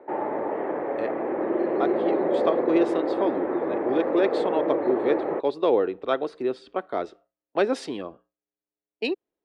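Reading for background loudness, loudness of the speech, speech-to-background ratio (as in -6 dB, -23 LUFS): -26.5 LUFS, -27.5 LUFS, -1.0 dB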